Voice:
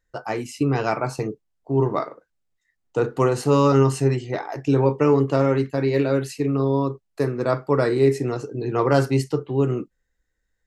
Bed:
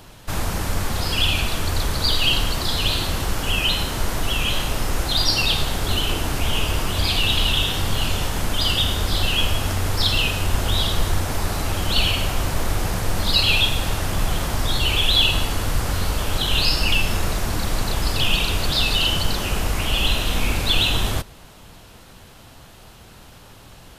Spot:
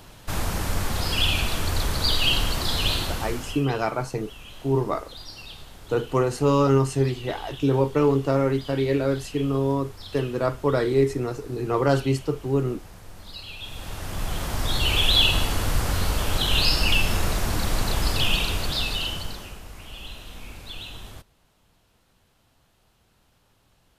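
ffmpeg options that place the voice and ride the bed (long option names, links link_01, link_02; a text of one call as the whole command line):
ffmpeg -i stem1.wav -i stem2.wav -filter_complex "[0:a]adelay=2950,volume=-2.5dB[link_01];[1:a]volume=17.5dB,afade=type=out:start_time=2.91:duration=0.75:silence=0.112202,afade=type=in:start_time=13.58:duration=1.42:silence=0.1,afade=type=out:start_time=18.06:duration=1.53:silence=0.133352[link_02];[link_01][link_02]amix=inputs=2:normalize=0" out.wav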